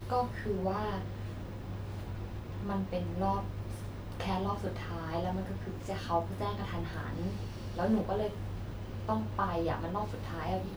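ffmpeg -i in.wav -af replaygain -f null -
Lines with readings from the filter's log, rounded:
track_gain = +16.0 dB
track_peak = 0.093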